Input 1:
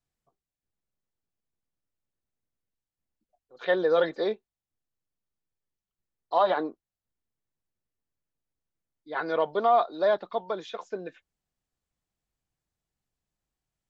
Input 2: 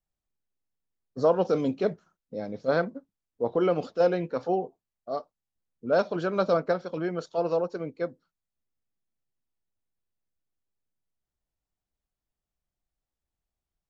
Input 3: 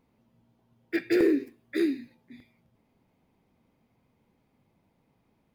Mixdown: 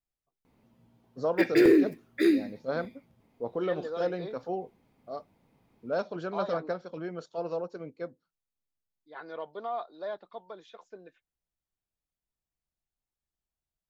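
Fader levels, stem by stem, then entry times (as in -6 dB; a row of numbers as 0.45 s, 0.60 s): -13.0 dB, -7.0 dB, +3.0 dB; 0.00 s, 0.00 s, 0.45 s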